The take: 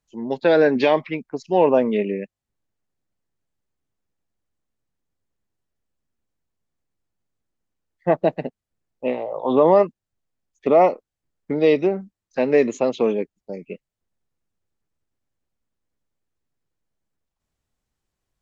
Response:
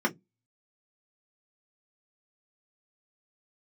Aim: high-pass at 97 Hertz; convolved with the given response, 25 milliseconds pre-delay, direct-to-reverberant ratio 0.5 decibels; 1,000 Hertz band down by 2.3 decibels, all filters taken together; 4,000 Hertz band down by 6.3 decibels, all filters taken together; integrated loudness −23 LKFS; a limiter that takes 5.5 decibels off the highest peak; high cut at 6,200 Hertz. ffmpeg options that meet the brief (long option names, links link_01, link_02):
-filter_complex "[0:a]highpass=97,lowpass=6200,equalizer=frequency=1000:width_type=o:gain=-3,equalizer=frequency=4000:width_type=o:gain=-7.5,alimiter=limit=-10dB:level=0:latency=1,asplit=2[link_01][link_02];[1:a]atrim=start_sample=2205,adelay=25[link_03];[link_02][link_03]afir=irnorm=-1:irlink=0,volume=-11.5dB[link_04];[link_01][link_04]amix=inputs=2:normalize=0,volume=-4.5dB"